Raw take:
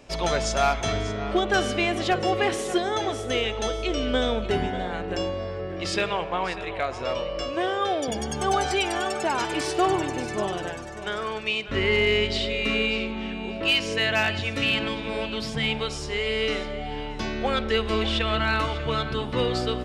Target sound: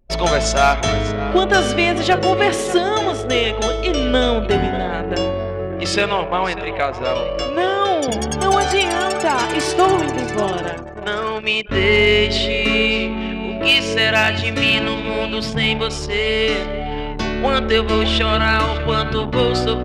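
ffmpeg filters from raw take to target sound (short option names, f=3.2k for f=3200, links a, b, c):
-af "anlmdn=3.98,volume=8dB"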